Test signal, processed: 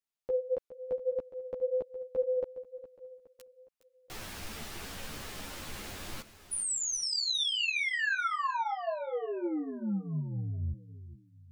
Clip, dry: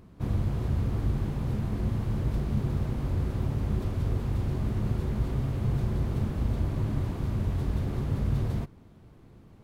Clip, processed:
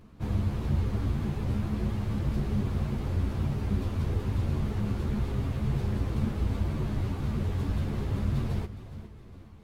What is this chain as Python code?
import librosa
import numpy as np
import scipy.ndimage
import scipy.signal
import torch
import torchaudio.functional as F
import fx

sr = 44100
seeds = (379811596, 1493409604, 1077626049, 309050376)

y = fx.peak_eq(x, sr, hz=3000.0, db=3.0, octaves=2.5)
y = fx.echo_feedback(y, sr, ms=414, feedback_pct=45, wet_db=-14.0)
y = fx.ensemble(y, sr)
y = y * 10.0 ** (2.5 / 20.0)